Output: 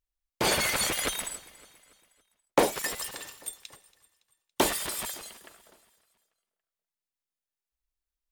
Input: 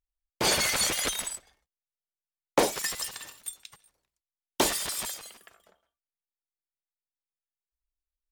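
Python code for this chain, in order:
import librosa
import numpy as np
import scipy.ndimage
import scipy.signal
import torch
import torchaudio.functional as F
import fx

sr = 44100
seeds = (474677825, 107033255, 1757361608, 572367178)

p1 = fx.dynamic_eq(x, sr, hz=5700.0, q=1.1, threshold_db=-41.0, ratio=4.0, max_db=-6)
p2 = p1 + fx.echo_feedback(p1, sr, ms=281, feedback_pct=50, wet_db=-21.0, dry=0)
y = p2 * 10.0 ** (1.0 / 20.0)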